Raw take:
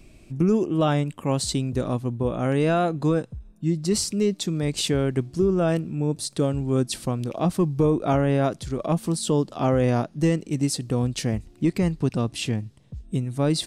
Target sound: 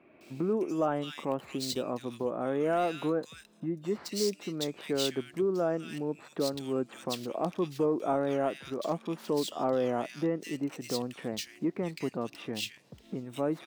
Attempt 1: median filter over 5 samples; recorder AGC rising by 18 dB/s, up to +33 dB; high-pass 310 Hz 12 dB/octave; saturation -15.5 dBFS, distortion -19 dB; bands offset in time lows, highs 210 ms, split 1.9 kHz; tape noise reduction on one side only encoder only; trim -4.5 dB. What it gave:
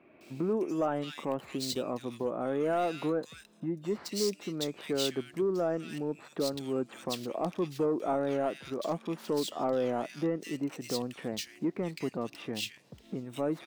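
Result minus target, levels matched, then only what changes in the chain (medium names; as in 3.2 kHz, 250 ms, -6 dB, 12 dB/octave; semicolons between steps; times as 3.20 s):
saturation: distortion +12 dB
change: saturation -8.5 dBFS, distortion -31 dB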